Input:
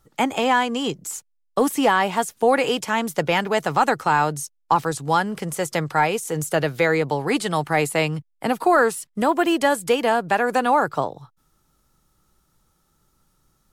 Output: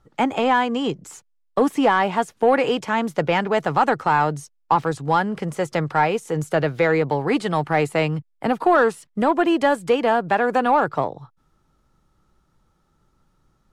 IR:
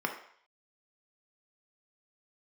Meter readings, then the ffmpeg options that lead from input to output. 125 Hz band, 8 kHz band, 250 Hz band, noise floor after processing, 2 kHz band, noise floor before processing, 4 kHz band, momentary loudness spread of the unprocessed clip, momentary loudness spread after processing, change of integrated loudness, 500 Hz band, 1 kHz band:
+2.0 dB, −10.5 dB, +1.5 dB, −65 dBFS, −1.0 dB, −67 dBFS, −3.5 dB, 8 LU, 7 LU, +0.5 dB, +1.0 dB, +0.5 dB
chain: -af "aemphasis=mode=reproduction:type=75fm,aeval=exprs='0.501*(cos(1*acos(clip(val(0)/0.501,-1,1)))-cos(1*PI/2))+0.0178*(cos(5*acos(clip(val(0)/0.501,-1,1)))-cos(5*PI/2))':channel_layout=same"

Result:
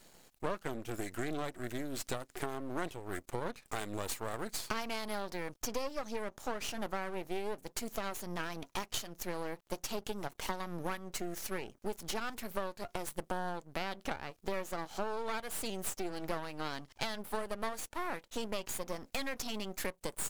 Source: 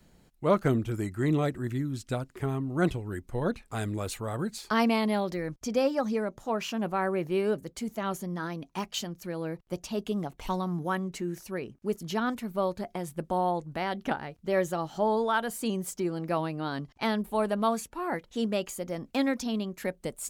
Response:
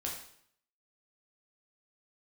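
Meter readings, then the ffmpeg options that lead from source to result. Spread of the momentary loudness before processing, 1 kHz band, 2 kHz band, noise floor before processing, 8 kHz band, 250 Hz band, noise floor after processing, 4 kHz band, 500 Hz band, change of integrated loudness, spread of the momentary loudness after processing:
8 LU, −8.0 dB, −5.0 dB, −62 dBFS, 0.0 dB, −12.5 dB, −69 dBFS, −3.0 dB, −10.0 dB, −9.0 dB, 3 LU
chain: -af "bass=frequency=250:gain=-14,treble=frequency=4000:gain=5,aeval=exprs='max(val(0),0)':channel_layout=same,acompressor=threshold=-41dB:ratio=6,volume=8dB"

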